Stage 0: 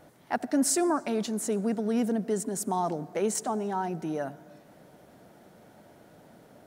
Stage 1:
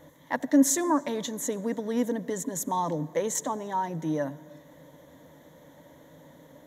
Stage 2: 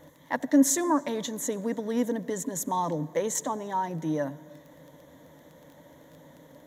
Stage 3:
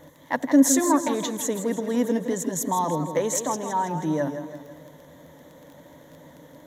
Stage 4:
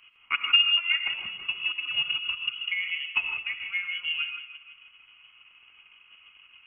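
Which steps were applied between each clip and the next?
rippled EQ curve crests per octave 1.1, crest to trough 13 dB
crackle 12 per s -41 dBFS
modulated delay 163 ms, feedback 49%, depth 106 cents, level -9 dB; trim +3.5 dB
transient shaper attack +8 dB, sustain -7 dB; frequency inversion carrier 3.1 kHz; gated-style reverb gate 180 ms rising, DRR 5 dB; trim -8.5 dB

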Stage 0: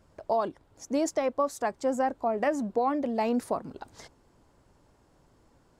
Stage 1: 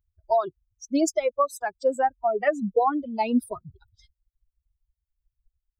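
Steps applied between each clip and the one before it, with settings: expander on every frequency bin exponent 3; trim +9 dB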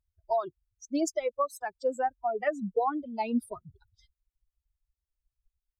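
vibrato 1.4 Hz 39 cents; trim -6 dB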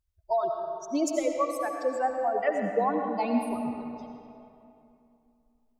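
algorithmic reverb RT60 2.8 s, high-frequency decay 0.65×, pre-delay 50 ms, DRR 2.5 dB; trim +1 dB

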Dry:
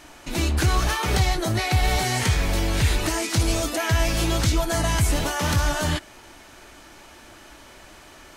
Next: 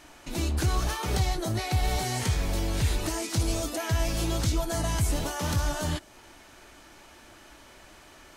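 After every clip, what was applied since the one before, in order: dynamic bell 2 kHz, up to -5 dB, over -42 dBFS, Q 0.82; trim -5 dB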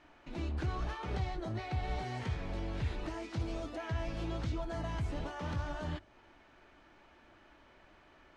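low-pass 2.7 kHz 12 dB/octave; hum notches 50/100 Hz; trim -8.5 dB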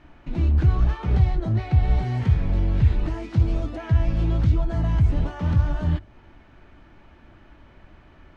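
tone controls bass +13 dB, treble -5 dB; trim +5.5 dB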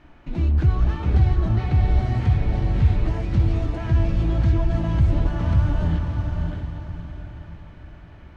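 echo that smears into a reverb 611 ms, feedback 42%, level -4 dB

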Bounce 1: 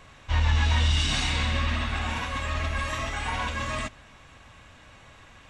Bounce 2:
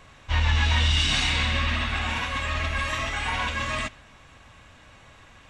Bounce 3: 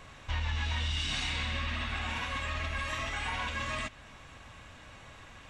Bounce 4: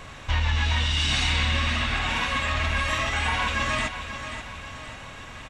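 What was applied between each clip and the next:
dynamic bell 2.6 kHz, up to +5 dB, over -42 dBFS, Q 0.7
compression 2.5:1, threshold -35 dBFS, peak gain reduction 11.5 dB
feedback delay 534 ms, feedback 50%, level -10 dB; trim +9 dB

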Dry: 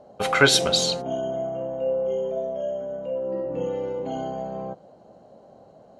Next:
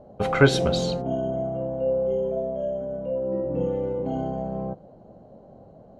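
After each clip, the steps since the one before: tilt EQ -3.5 dB/octave; trim -2.5 dB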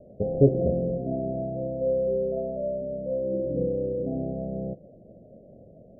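steep low-pass 660 Hz 72 dB/octave; trim -1 dB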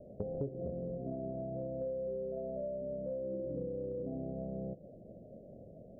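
compression 6:1, threshold -34 dBFS, peak gain reduction 20 dB; trim -2.5 dB

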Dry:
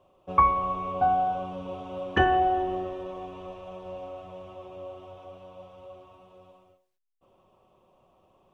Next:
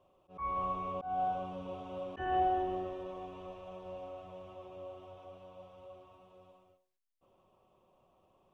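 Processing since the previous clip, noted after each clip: slow attack 232 ms; trim -6 dB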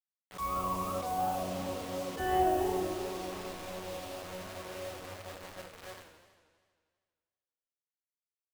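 word length cut 8-bit, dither none; Schroeder reverb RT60 0.81 s, combs from 29 ms, DRR 7 dB; modulated delay 80 ms, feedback 74%, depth 213 cents, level -11.5 dB; trim +3.5 dB

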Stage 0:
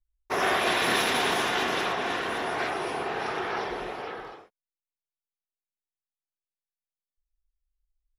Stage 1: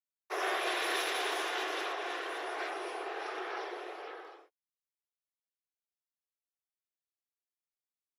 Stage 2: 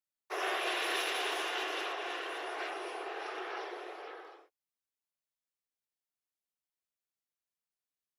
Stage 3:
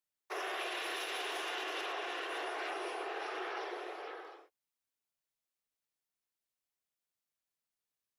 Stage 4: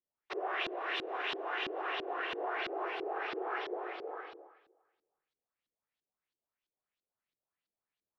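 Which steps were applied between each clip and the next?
steep high-pass 310 Hz 96 dB/octave; band-stop 920 Hz, Q 18; trim -8 dB
dynamic bell 2.8 kHz, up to +6 dB, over -55 dBFS, Q 6.1; trim -1.5 dB
peak limiter -31 dBFS, peak gain reduction 9.5 dB; trim +1 dB
echo whose repeats swap between lows and highs 119 ms, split 990 Hz, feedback 55%, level -10.5 dB; LFO low-pass saw up 3 Hz 310–4200 Hz

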